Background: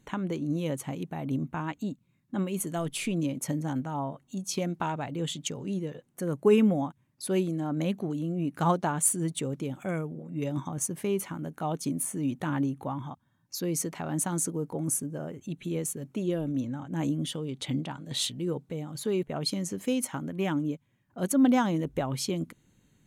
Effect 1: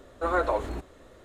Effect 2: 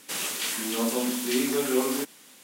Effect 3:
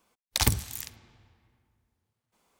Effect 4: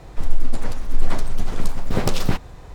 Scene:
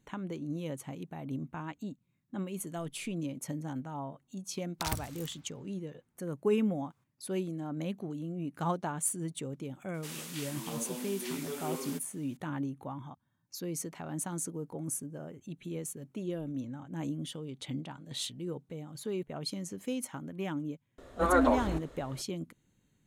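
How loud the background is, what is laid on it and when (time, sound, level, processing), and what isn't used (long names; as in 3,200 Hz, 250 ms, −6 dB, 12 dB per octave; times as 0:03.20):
background −7 dB
0:04.45: mix in 3 −11.5 dB + parametric band 1,300 Hz +6.5 dB
0:09.94: mix in 2 −13 dB
0:20.98: mix in 1 −0.5 dB
not used: 4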